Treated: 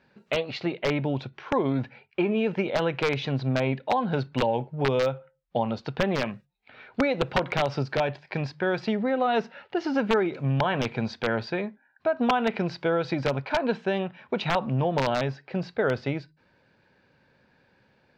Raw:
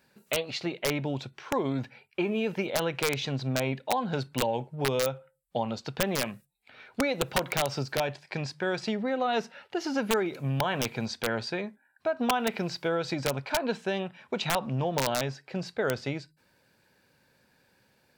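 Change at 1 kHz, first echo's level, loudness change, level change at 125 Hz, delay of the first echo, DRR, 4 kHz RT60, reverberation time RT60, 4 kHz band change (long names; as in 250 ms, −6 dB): +3.5 dB, no echo audible, +3.0 dB, +4.5 dB, no echo audible, no reverb audible, no reverb audible, no reverb audible, −1.5 dB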